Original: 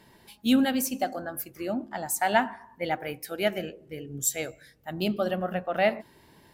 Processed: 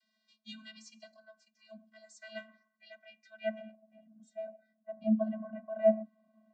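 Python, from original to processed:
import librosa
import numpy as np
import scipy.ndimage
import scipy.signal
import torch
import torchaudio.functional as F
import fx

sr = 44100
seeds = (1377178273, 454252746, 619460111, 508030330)

y = fx.filter_sweep_bandpass(x, sr, from_hz=4600.0, to_hz=530.0, start_s=2.98, end_s=3.97, q=1.3)
y = fx.vocoder(y, sr, bands=32, carrier='square', carrier_hz=218.0)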